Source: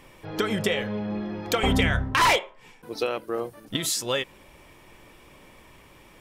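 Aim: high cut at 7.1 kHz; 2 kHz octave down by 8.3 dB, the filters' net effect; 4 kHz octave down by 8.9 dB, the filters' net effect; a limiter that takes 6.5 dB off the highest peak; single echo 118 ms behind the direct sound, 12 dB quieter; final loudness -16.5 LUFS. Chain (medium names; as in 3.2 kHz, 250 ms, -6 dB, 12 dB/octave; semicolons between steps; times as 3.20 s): low-pass 7.1 kHz; peaking EQ 2 kHz -8 dB; peaking EQ 4 kHz -8.5 dB; peak limiter -19 dBFS; delay 118 ms -12 dB; trim +14 dB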